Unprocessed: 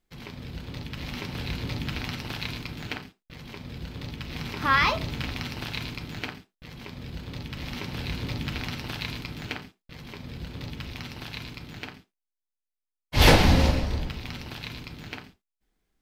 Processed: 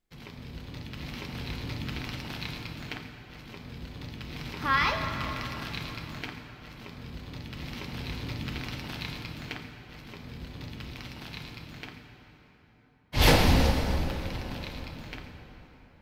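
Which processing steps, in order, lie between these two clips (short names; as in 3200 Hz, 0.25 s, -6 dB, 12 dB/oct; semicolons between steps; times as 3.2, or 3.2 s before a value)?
13.23–14.13 high shelf 9300 Hz +6.5 dB; plate-style reverb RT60 4.3 s, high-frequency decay 0.6×, DRR 5 dB; gain -4.5 dB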